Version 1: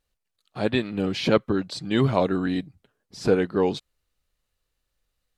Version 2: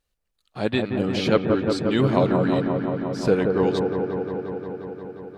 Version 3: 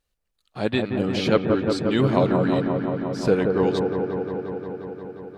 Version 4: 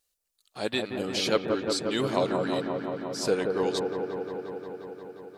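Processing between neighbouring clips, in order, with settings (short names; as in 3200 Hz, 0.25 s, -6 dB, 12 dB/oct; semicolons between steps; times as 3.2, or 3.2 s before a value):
dark delay 0.177 s, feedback 81%, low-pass 1500 Hz, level -4 dB
nothing audible
tone controls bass -10 dB, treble +13 dB; gain -4.5 dB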